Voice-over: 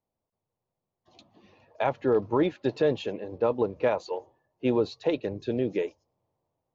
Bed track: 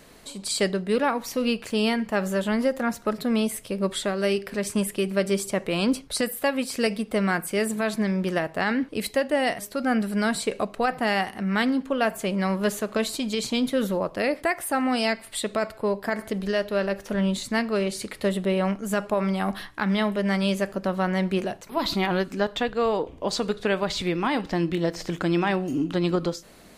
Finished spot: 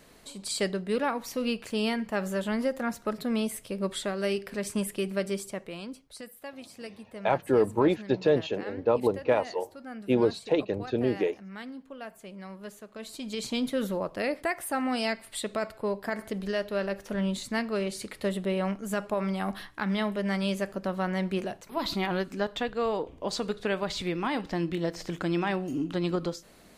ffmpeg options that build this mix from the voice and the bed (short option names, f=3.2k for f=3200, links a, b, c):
-filter_complex "[0:a]adelay=5450,volume=1dB[a];[1:a]volume=8dB,afade=t=out:st=5.08:d=0.8:silence=0.223872,afade=t=in:st=12.97:d=0.54:silence=0.223872[b];[a][b]amix=inputs=2:normalize=0"